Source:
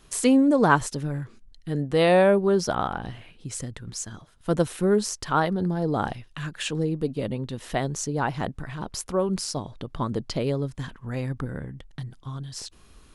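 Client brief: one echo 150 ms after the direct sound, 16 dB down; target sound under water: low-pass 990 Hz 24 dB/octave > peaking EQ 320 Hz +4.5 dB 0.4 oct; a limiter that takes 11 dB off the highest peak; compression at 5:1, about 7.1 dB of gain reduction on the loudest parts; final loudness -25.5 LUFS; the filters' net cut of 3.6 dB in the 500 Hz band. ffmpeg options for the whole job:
-af "equalizer=f=500:t=o:g=-5.5,acompressor=threshold=0.0631:ratio=5,alimiter=limit=0.0668:level=0:latency=1,lowpass=f=990:w=0.5412,lowpass=f=990:w=1.3066,equalizer=f=320:t=o:w=0.4:g=4.5,aecho=1:1:150:0.158,volume=2.66"

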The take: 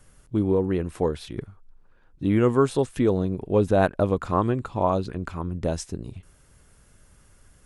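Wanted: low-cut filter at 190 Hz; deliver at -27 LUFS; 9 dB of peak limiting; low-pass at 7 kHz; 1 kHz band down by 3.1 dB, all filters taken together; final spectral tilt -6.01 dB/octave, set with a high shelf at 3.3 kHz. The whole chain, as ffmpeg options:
-af "highpass=190,lowpass=7000,equalizer=f=1000:t=o:g=-4.5,highshelf=f=3300:g=5.5,volume=1.33,alimiter=limit=0.211:level=0:latency=1"

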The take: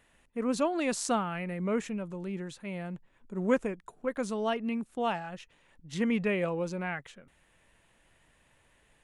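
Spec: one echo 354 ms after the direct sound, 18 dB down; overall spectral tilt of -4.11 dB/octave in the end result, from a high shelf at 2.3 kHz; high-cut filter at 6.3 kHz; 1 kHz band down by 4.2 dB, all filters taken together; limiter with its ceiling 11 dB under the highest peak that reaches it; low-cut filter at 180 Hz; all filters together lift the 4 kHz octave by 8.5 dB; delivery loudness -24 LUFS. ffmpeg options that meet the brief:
-af "highpass=180,lowpass=6300,equalizer=f=1000:t=o:g=-7.5,highshelf=f=2300:g=5,equalizer=f=4000:t=o:g=8,alimiter=limit=0.0708:level=0:latency=1,aecho=1:1:354:0.126,volume=3.55"

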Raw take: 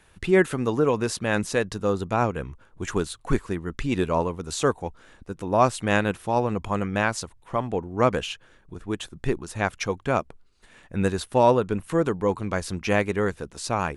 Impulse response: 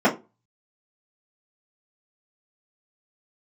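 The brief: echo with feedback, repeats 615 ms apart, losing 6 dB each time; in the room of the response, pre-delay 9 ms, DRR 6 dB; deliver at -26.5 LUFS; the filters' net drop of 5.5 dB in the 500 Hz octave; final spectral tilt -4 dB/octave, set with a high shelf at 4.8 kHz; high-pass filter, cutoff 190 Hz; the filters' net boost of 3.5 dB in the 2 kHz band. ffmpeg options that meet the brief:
-filter_complex "[0:a]highpass=190,equalizer=f=500:t=o:g=-7,equalizer=f=2000:t=o:g=6,highshelf=f=4800:g=-6.5,aecho=1:1:615|1230|1845|2460|3075|3690:0.501|0.251|0.125|0.0626|0.0313|0.0157,asplit=2[s0][s1];[1:a]atrim=start_sample=2205,adelay=9[s2];[s1][s2]afir=irnorm=-1:irlink=0,volume=0.0501[s3];[s0][s3]amix=inputs=2:normalize=0,volume=0.841"

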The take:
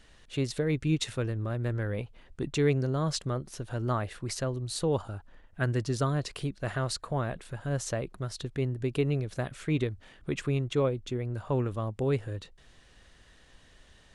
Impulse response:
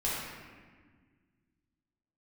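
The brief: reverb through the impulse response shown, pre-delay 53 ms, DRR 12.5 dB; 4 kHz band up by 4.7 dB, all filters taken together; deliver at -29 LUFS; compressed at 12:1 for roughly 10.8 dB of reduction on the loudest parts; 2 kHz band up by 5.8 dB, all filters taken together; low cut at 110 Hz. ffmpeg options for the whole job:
-filter_complex "[0:a]highpass=110,equalizer=f=2000:t=o:g=6.5,equalizer=f=4000:t=o:g=4,acompressor=threshold=0.0251:ratio=12,asplit=2[s0][s1];[1:a]atrim=start_sample=2205,adelay=53[s2];[s1][s2]afir=irnorm=-1:irlink=0,volume=0.1[s3];[s0][s3]amix=inputs=2:normalize=0,volume=2.66"

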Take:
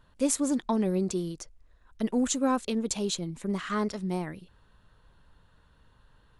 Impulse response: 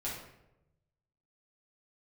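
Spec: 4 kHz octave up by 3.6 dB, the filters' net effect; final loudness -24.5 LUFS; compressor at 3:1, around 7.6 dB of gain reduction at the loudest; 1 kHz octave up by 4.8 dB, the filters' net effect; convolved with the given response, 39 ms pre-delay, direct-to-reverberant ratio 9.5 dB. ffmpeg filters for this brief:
-filter_complex "[0:a]equalizer=f=1000:t=o:g=5.5,equalizer=f=4000:t=o:g=4,acompressor=threshold=0.0316:ratio=3,asplit=2[s0][s1];[1:a]atrim=start_sample=2205,adelay=39[s2];[s1][s2]afir=irnorm=-1:irlink=0,volume=0.251[s3];[s0][s3]amix=inputs=2:normalize=0,volume=2.66"

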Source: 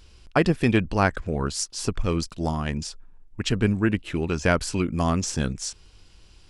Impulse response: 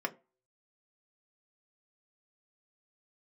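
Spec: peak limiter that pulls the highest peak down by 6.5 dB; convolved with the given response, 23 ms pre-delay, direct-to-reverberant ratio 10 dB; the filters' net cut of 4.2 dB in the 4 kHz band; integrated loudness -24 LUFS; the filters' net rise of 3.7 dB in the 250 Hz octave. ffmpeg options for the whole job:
-filter_complex "[0:a]equalizer=f=250:t=o:g=5,equalizer=f=4000:t=o:g=-6,alimiter=limit=0.266:level=0:latency=1,asplit=2[s0][s1];[1:a]atrim=start_sample=2205,adelay=23[s2];[s1][s2]afir=irnorm=-1:irlink=0,volume=0.178[s3];[s0][s3]amix=inputs=2:normalize=0,volume=1.12"

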